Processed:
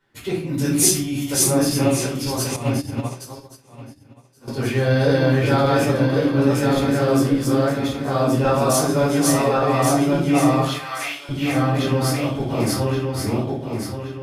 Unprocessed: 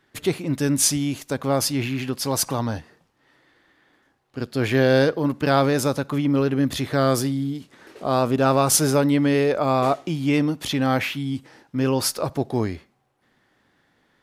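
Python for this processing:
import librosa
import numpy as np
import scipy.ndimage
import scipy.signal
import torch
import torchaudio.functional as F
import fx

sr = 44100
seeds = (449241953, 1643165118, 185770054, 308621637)

y = fx.reverse_delay_fb(x, sr, ms=563, feedback_pct=60, wet_db=0.0)
y = fx.high_shelf(y, sr, hz=fx.line((0.47, 4100.0), (1.49, 8200.0)), db=10.5, at=(0.47, 1.49), fade=0.02)
y = fx.highpass(y, sr, hz=1300.0, slope=12, at=(10.61, 11.29))
y = fx.room_shoebox(y, sr, seeds[0], volume_m3=370.0, walls='furnished', distance_m=4.7)
y = fx.upward_expand(y, sr, threshold_db=-23.0, expansion=2.5, at=(2.56, 4.48))
y = y * librosa.db_to_amplitude(-10.0)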